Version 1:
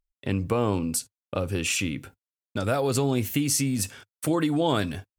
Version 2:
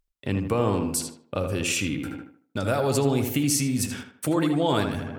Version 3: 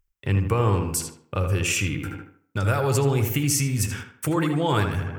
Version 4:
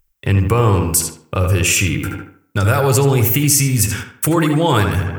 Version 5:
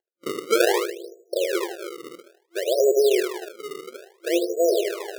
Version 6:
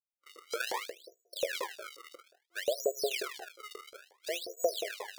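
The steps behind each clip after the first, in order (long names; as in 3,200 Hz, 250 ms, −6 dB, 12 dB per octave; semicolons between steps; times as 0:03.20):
tape delay 78 ms, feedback 52%, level −4.5 dB, low-pass 2,200 Hz; reversed playback; upward compression, threshold −26 dBFS; reversed playback
graphic EQ with 15 bands 100 Hz +4 dB, 250 Hz −11 dB, 630 Hz −9 dB, 4,000 Hz −9 dB, 10,000 Hz −5 dB; tape delay 130 ms, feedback 24%, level −22 dB, low-pass 2,200 Hz; level +5 dB
high-shelf EQ 8,500 Hz +9 dB; in parallel at 0 dB: brickwall limiter −15 dBFS, peak gain reduction 8.5 dB; on the sum: level +2.5 dB
brick-wall band-pass 340–690 Hz; sample-and-hold swept by an LFO 30×, swing 160% 0.59 Hz
fade in at the beginning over 1.23 s; auto-filter high-pass saw up 5.6 Hz 530–5,100 Hz; level −8.5 dB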